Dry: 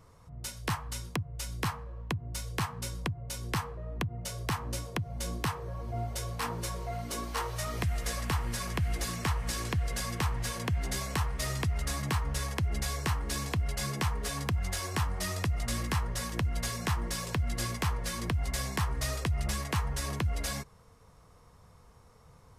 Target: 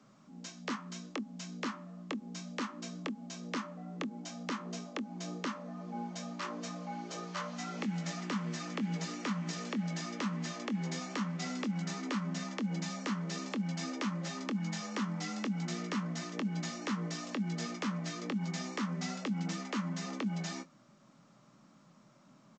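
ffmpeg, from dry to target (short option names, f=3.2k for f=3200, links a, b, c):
-filter_complex "[0:a]asplit=2[a][b];[b]adelay=23,volume=-11.5dB[c];[a][c]amix=inputs=2:normalize=0,afreqshift=120,volume=-5.5dB" -ar 16000 -c:a pcm_alaw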